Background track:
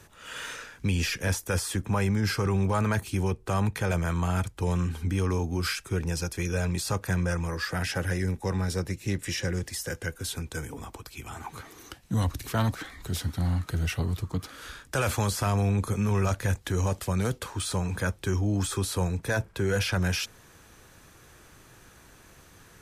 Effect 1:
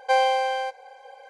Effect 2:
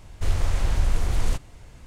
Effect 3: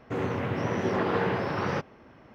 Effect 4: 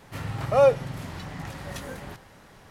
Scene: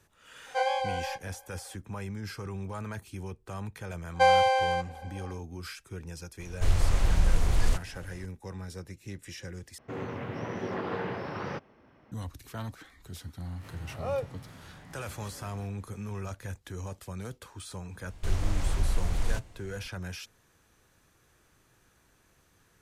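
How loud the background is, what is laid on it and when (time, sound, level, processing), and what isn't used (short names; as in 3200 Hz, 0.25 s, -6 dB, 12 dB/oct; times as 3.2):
background track -12 dB
0.46 add 1 -5 dB + chorus 2.7 Hz, delay 15.5 ms, depth 8 ms
4.11 add 1 -0.5 dB, fades 0.10 s
6.4 add 2 -1.5 dB
9.78 replace with 3 -7 dB
13.51 add 4 -14.5 dB + spectral swells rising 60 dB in 0.31 s
18.02 add 2 -5.5 dB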